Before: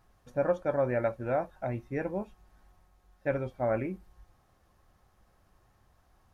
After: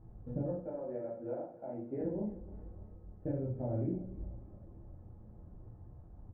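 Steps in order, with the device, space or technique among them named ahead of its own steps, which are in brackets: 0.64–2.01 HPF 400 Hz 12 dB/oct; television next door (compressor 5:1, threshold -45 dBFS, peak gain reduction 20 dB; LPF 340 Hz 12 dB/oct; reverb RT60 0.50 s, pre-delay 10 ms, DRR -4.5 dB); feedback echo 0.299 s, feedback 54%, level -18.5 dB; gain +9.5 dB

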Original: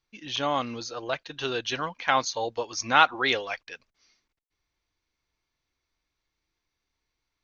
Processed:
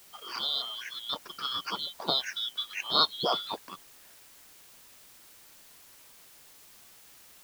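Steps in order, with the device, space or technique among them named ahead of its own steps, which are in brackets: split-band scrambled radio (four-band scrambler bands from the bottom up 2413; BPF 300–3000 Hz; white noise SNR 19 dB)

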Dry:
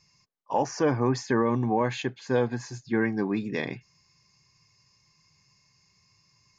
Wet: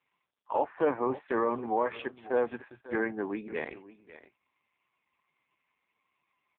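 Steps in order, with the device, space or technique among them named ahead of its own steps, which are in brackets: 1.01–2.33 HPF 59 Hz -> 150 Hz 6 dB/oct; satellite phone (BPF 390–3000 Hz; echo 0.547 s -16.5 dB; AMR-NB 4.75 kbps 8000 Hz)

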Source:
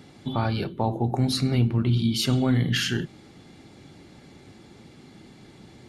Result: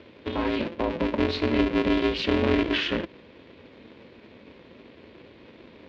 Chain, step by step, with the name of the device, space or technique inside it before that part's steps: ring modulator pedal into a guitar cabinet (polarity switched at an audio rate 170 Hz; speaker cabinet 96–3700 Hz, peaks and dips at 150 Hz -5 dB, 230 Hz +7 dB, 530 Hz +3 dB, 750 Hz -8 dB, 1300 Hz -5 dB, 2500 Hz +3 dB)

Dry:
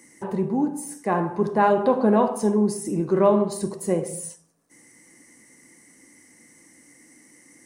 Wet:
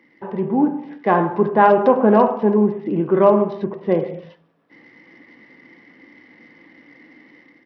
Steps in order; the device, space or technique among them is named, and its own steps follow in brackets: Bluetooth headset (HPF 200 Hz 6 dB/oct; AGC gain up to 9 dB; downsampling 8000 Hz; SBC 64 kbps 44100 Hz)

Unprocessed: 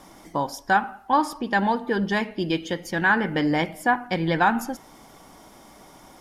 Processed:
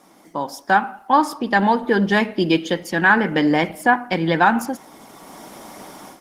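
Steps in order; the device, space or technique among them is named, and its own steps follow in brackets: video call (HPF 160 Hz 24 dB/oct; AGC gain up to 14 dB; gain -2 dB; Opus 20 kbps 48000 Hz)

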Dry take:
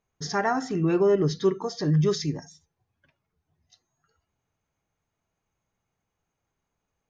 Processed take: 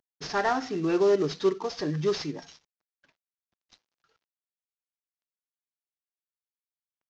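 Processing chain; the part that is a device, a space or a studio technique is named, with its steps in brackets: early wireless headset (HPF 270 Hz 12 dB/oct; CVSD 32 kbps)

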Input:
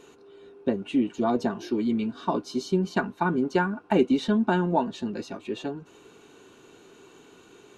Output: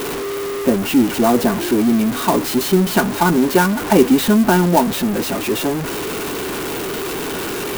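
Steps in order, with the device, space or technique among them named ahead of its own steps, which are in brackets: early CD player with a faulty converter (zero-crossing step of -26.5 dBFS; clock jitter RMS 0.044 ms); gain +8 dB

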